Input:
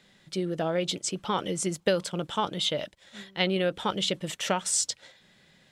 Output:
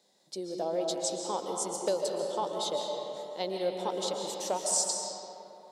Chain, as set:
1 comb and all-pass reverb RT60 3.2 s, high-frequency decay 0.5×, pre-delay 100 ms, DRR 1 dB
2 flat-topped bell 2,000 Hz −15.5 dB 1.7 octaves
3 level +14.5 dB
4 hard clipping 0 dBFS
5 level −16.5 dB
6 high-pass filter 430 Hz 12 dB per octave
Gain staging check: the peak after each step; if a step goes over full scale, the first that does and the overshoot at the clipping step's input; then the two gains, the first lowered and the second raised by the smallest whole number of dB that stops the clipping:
−9.0, −11.0, +3.5, 0.0, −16.5, −15.0 dBFS
step 3, 3.5 dB
step 3 +10.5 dB, step 5 −12.5 dB

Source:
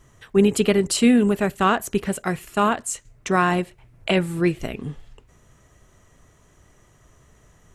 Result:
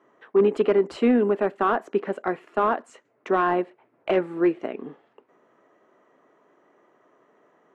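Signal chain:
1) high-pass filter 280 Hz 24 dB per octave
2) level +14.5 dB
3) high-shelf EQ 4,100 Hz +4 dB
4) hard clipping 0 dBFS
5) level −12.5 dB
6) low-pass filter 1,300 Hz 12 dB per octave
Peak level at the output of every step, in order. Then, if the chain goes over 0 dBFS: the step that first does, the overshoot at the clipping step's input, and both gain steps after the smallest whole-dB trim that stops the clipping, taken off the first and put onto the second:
−6.0, +8.5, +9.0, 0.0, −12.5, −12.0 dBFS
step 2, 9.0 dB
step 2 +5.5 dB, step 5 −3.5 dB

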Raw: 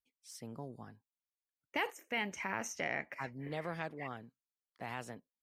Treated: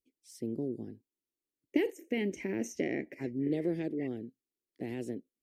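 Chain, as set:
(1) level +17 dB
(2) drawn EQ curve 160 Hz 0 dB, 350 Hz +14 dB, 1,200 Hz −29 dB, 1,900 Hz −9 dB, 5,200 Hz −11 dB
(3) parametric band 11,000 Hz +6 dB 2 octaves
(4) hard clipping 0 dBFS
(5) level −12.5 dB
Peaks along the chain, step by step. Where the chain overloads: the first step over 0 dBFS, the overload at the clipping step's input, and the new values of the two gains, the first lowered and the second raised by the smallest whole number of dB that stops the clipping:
−3.5, −1.5, −1.5, −1.5, −14.0 dBFS
no step passes full scale

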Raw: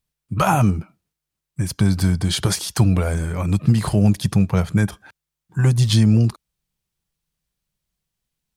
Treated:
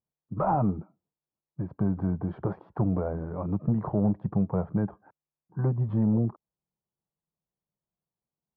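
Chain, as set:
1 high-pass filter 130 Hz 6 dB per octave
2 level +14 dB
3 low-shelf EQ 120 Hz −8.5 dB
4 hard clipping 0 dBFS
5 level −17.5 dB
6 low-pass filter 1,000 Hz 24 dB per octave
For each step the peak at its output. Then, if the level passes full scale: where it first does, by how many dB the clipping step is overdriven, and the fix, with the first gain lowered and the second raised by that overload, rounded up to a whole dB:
−5.5, +8.5, +8.0, 0.0, −17.5, −16.5 dBFS
step 2, 8.0 dB
step 2 +6 dB, step 5 −9.5 dB

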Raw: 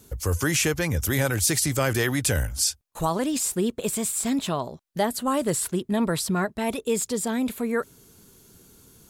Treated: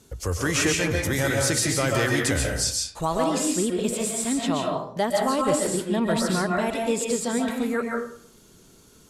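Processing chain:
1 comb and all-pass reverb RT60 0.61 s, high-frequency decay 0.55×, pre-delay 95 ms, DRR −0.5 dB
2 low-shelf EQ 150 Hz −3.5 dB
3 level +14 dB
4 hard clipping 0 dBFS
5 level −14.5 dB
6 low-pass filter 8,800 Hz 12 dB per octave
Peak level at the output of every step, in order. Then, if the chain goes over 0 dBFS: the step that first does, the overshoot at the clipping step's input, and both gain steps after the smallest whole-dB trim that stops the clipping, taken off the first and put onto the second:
−7.0, −7.0, +7.0, 0.0, −14.5, −13.5 dBFS
step 3, 7.0 dB
step 3 +7 dB, step 5 −7.5 dB

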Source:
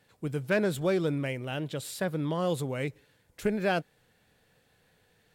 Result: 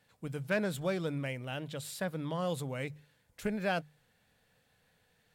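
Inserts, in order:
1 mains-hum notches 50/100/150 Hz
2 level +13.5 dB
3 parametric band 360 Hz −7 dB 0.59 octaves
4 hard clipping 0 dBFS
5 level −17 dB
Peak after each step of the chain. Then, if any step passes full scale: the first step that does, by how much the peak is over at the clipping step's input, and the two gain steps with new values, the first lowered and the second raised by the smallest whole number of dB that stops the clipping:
−16.0, −2.5, −3.0, −3.0, −20.0 dBFS
no step passes full scale

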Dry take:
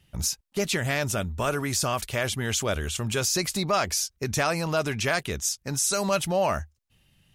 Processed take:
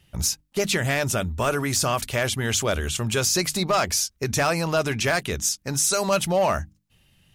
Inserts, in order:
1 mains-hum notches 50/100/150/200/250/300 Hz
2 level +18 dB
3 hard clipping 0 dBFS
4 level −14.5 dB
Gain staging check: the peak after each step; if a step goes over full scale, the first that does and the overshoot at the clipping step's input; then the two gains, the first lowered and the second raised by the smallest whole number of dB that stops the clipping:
−11.5, +6.5, 0.0, −14.5 dBFS
step 2, 6.5 dB
step 2 +11 dB, step 4 −7.5 dB

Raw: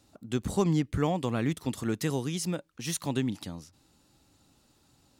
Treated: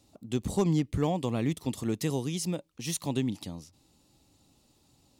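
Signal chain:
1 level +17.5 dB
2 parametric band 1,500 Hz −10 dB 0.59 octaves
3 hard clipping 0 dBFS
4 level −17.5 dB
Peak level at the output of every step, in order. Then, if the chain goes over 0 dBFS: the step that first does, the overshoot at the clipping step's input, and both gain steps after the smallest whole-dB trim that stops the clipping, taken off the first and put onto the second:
+3.0, +3.0, 0.0, −17.5 dBFS
step 1, 3.0 dB
step 1 +14.5 dB, step 4 −14.5 dB

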